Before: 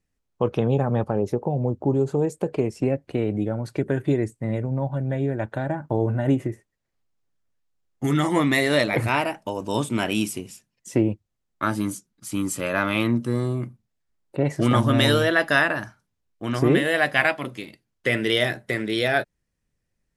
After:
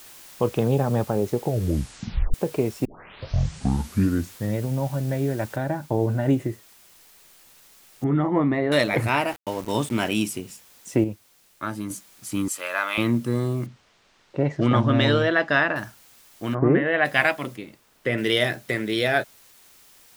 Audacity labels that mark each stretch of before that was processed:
1.410000	1.410000	tape stop 0.93 s
2.850000	2.850000	tape start 1.73 s
5.560000	5.560000	noise floor step -46 dB -53 dB
8.040000	8.720000	LPF 1100 Hz
9.280000	10.090000	sample gate under -36 dBFS
11.040000	11.900000	gain -6 dB
12.480000	12.980000	HPF 770 Hz
13.660000	15.760000	air absorption 150 m
16.530000	17.040000	LPF 1300 Hz -> 3100 Hz 24 dB/oct
17.560000	18.180000	high shelf 2200 Hz -10.5 dB

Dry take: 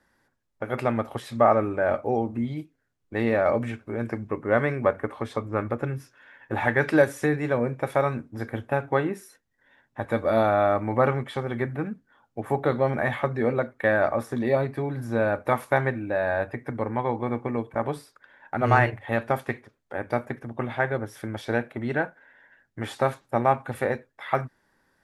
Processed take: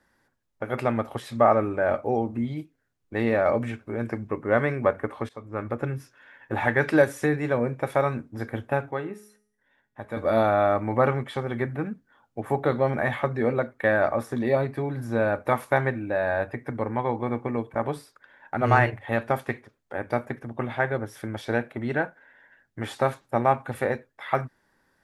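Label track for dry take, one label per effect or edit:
5.290000	5.830000	fade in, from -18 dB
8.910000	10.170000	resonator 210 Hz, decay 0.61 s

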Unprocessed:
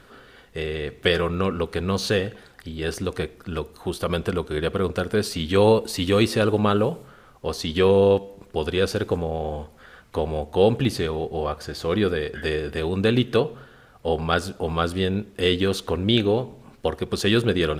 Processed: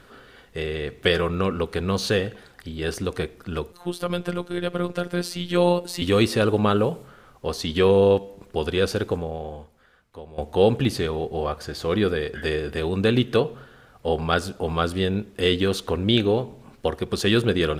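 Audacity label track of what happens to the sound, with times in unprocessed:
3.720000	6.020000	robotiser 176 Hz
8.990000	10.380000	fade out quadratic, to -16 dB

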